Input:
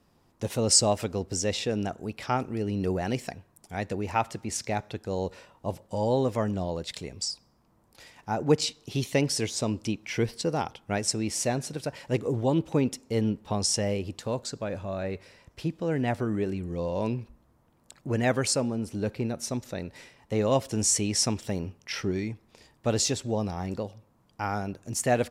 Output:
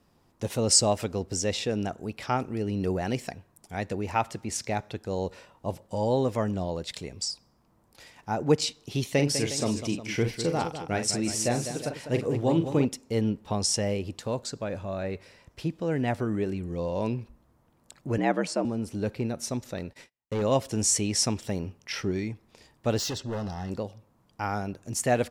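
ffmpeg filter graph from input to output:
-filter_complex "[0:a]asettb=1/sr,asplit=3[a][b][c];[a]atrim=end=9.144[d];[b]atrim=start=9.14:end=12.85,asetpts=PTS-STARTPTS,afade=t=in:d=0.004:c=qsin,afade=t=out:st=3.706:d=0.004:c=qsin,bandreject=f=960:w=26,aecho=1:1:42|200|359:0.398|0.316|0.2,atrim=end_sample=163611[e];[c]atrim=start=12.846[f];[d][e]acrossfade=d=0.004:c1=hsin:c2=qsin[g];[g][f]acrossfade=d=0.004:c1=qsin:c2=hsin,asettb=1/sr,asplit=3[h][i][j];[h]atrim=end=18.184[k];[i]atrim=start=18.18:end=18.65,asetpts=PTS-STARTPTS,afade=t=in:d=0.004:c=qsin,afade=t=out:st=0.466:d=0.004:c=qsin,lowpass=f=2.1k:p=1,afreqshift=70[l];[j]atrim=start=18.646[m];[k][l]acrossfade=d=0.004:c1=hsin:c2=qsin[n];[n][m]acrossfade=d=0.004:c1=qsin:c2=hsin,asettb=1/sr,asplit=3[o][p][q];[o]atrim=end=19.764[r];[p]atrim=start=19.76:end=20.42,asetpts=PTS-STARTPTS,afade=t=in:d=0.004:c=qsin,afade=t=out:st=0.656:d=0.004:c=qsin,asoftclip=type=hard:threshold=-24.5dB,agate=range=-39dB:threshold=-49dB:ratio=16:release=100:detection=peak[s];[q]atrim=start=20.416[t];[r][s]acrossfade=d=0.004:c1=hsin:c2=qsin[u];[u][t]acrossfade=d=0.004:c1=qsin:c2=hsin,asettb=1/sr,asplit=3[v][w][x];[v]atrim=end=22.984[y];[w]atrim=start=22.98:end=23.7,asetpts=PTS-STARTPTS,afade=t=in:d=0.004:c=qsin,afade=t=out:st=0.716:d=0.004:c=qsin,highshelf=f=7.1k:t=q:w=1.5:g=-9,asoftclip=type=hard:threshold=-29dB,asuperstop=centerf=2300:order=12:qfactor=6.8[z];[x]atrim=start=23.696[aa];[y][z]acrossfade=d=0.004:c1=hsin:c2=qsin[ab];[ab][aa]acrossfade=d=0.004:c1=qsin:c2=hsin"

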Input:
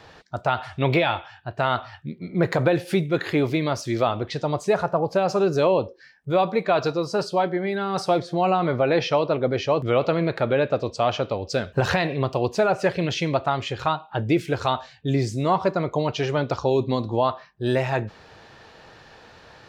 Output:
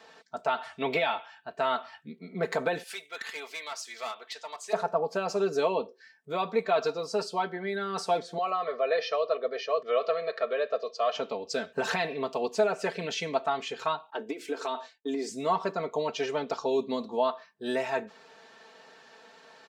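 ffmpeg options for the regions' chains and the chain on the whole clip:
-filter_complex "[0:a]asettb=1/sr,asplit=3[a][b][c];[a]atrim=end=2.834[d];[b]atrim=start=2.83:end=4.73,asetpts=PTS-STARTPTS,afade=t=in:d=0.004:c=qsin,afade=t=out:st=1.896:d=0.004:c=qsin,highpass=1.1k,aeval=exprs='clip(val(0),-1,0.0447)':c=same[e];[c]atrim=start=4.726[f];[d][e]acrossfade=d=0.004:c1=hsin:c2=qsin[g];[g][f]acrossfade=d=0.004:c1=qsin:c2=hsin,asettb=1/sr,asplit=3[h][i][j];[h]atrim=end=8.384[k];[i]atrim=start=8.38:end=11.15,asetpts=PTS-STARTPTS,afade=t=in:d=0.004:c=qsin,afade=t=out:st=2.766:d=0.004:c=qsin,highpass=450,equalizer=f=850:t=q:w=4:g=-10,equalizer=f=2.3k:t=q:w=4:g=-5,equalizer=f=3.3k:t=q:w=4:g=-4,lowpass=f=5.3k:w=0.5412,lowpass=f=5.3k:w=1.3066,aecho=1:1:1.7:0.63,atrim=end_sample=122157[l];[j]atrim=start=11.146[m];[k][l]acrossfade=d=0.004:c1=hsin:c2=qsin[n];[n][m]acrossfade=d=0.004:c1=qsin:c2=hsin,asettb=1/sr,asplit=3[o][p][q];[o]atrim=end=14.104[r];[p]atrim=start=14.1:end=15.3,asetpts=PTS-STARTPTS,afade=t=in:d=0.004:c=qsin,afade=t=out:st=1.196:d=0.004:c=qsin,lowshelf=f=220:t=q:w=3:g=-10,acompressor=threshold=-20dB:ratio=12:attack=3.2:release=140:knee=1:detection=peak,agate=range=-33dB:threshold=-44dB:ratio=3:release=100:detection=peak[s];[q]atrim=start=15.296[t];[r][s]acrossfade=d=0.004:c1=hsin:c2=qsin[u];[u][t]acrossfade=d=0.004:c1=qsin:c2=hsin,highpass=270,equalizer=f=7.7k:w=2:g=5,aecho=1:1:4.5:0.79,volume=-7.5dB"

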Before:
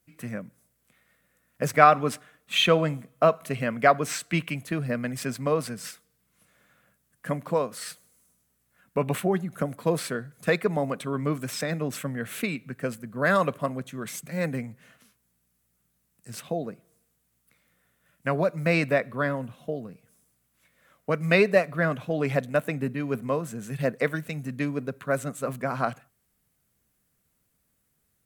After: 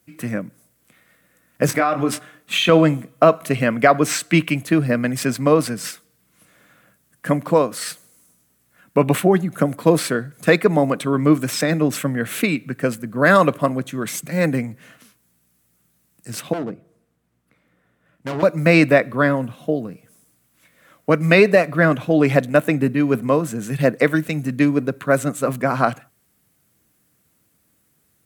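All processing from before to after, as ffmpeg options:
-filter_complex "[0:a]asettb=1/sr,asplit=3[a][b][c];[a]atrim=end=1.664[d];[b]atrim=start=1.66:end=2.69,asetpts=PTS-STARTPTS,afade=t=in:d=0.004:c=qsin,afade=t=out:st=1.026:d=0.004:c=qsin,acompressor=threshold=-26dB:ratio=4:attack=3.2:release=140:knee=1:detection=peak,asplit=2[e][f];[f]adelay=23,volume=-6.5dB[g];[e][g]amix=inputs=2:normalize=0,atrim=end_sample=45423[h];[c]atrim=start=2.686[i];[d][h]acrossfade=d=0.004:c1=hsin:c2=qsin[j];[j][i]acrossfade=d=0.004:c1=qsin:c2=hsin,asettb=1/sr,asplit=3[k][l][m];[k]atrim=end=16.534[n];[l]atrim=start=16.53:end=18.43,asetpts=PTS-STARTPTS,afade=t=in:d=0.004:c=qsin,afade=t=out:st=1.896:d=0.004:c=qsin,lowpass=f=1.2k:p=1,asoftclip=type=hard:threshold=-33dB,bandreject=f=50:t=h:w=6,bandreject=f=100:t=h:w=6,bandreject=f=150:t=h:w=6[o];[m]atrim=start=18.426[p];[n][o]acrossfade=d=0.004:c1=hsin:c2=qsin[q];[q][p]acrossfade=d=0.004:c1=qsin:c2=hsin,highpass=78,equalizer=f=310:t=o:w=0.21:g=8,alimiter=level_in=10dB:limit=-1dB:release=50:level=0:latency=1,volume=-1dB"

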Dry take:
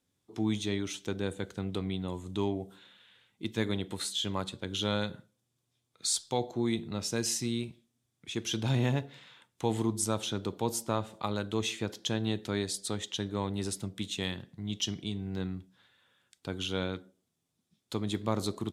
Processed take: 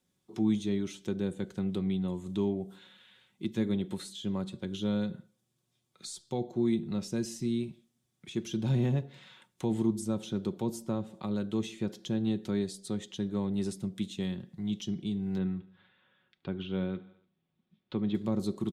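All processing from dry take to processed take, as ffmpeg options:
-filter_complex "[0:a]asettb=1/sr,asplit=3[a][b][c];[a]atrim=end=15.384[d];[b]atrim=start=15.38:end=18.15,asetpts=PTS-STARTPTS,afade=t=in:d=0.004:c=qsin,afade=t=out:st=2.766:d=0.004:c=qsin,lowpass=f=3.3k:w=0.5412,lowpass=f=3.3k:w=1.3066,aecho=1:1:73|146|219|292:0.0891|0.049|0.027|0.0148,atrim=end_sample=122157[e];[c]atrim=start=18.146[f];[d][e]acrossfade=d=0.004:c1=hsin:c2=qsin[g];[g][f]acrossfade=d=0.004:c1=qsin:c2=hsin,equalizer=f=200:t=o:w=1.2:g=3,aecho=1:1:5.4:0.43,acrossover=split=480[h][i];[i]acompressor=threshold=-48dB:ratio=2.5[j];[h][j]amix=inputs=2:normalize=0"

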